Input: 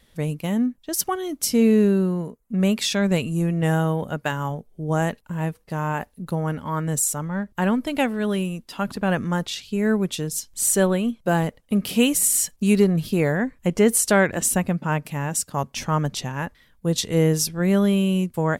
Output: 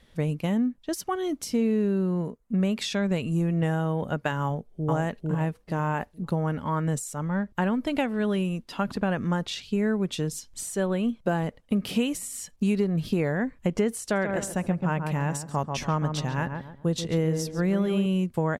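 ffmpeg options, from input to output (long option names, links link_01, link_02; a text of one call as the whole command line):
ffmpeg -i in.wav -filter_complex "[0:a]asplit=2[link_01][link_02];[link_02]afade=type=in:start_time=4.43:duration=0.01,afade=type=out:start_time=4.89:duration=0.01,aecho=0:1:450|900|1350|1800:1|0.25|0.0625|0.015625[link_03];[link_01][link_03]amix=inputs=2:normalize=0,asettb=1/sr,asplit=3[link_04][link_05][link_06];[link_04]atrim=end=14.024[link_07];[link_05]atrim=start=14.02:end=18.06,asetpts=PTS-STARTPTS,afade=type=in:duration=0.004:curve=qsin,afade=type=out:start_time=4.036:duration=0.004:curve=qsin,asplit=2[link_08][link_09];[link_09]adelay=137,lowpass=frequency=1300:poles=1,volume=-6.5dB,asplit=2[link_10][link_11];[link_11]adelay=137,lowpass=frequency=1300:poles=1,volume=0.35,asplit=2[link_12][link_13];[link_13]adelay=137,lowpass=frequency=1300:poles=1,volume=0.35,asplit=2[link_14][link_15];[link_15]adelay=137,lowpass=frequency=1300:poles=1,volume=0.35[link_16];[link_08][link_10][link_12][link_14][link_16]amix=inputs=5:normalize=0,atrim=end_sample=178164[link_17];[link_06]atrim=start=18.056[link_18];[link_07][link_17]acrossfade=duration=0.004:curve1=hsin:curve2=qsin[link_19];[link_19][link_18]acrossfade=duration=0.004:curve1=qsin:curve2=hsin,highshelf=frequency=3700:gain=7,acompressor=threshold=-22dB:ratio=5,aemphasis=mode=reproduction:type=75fm" out.wav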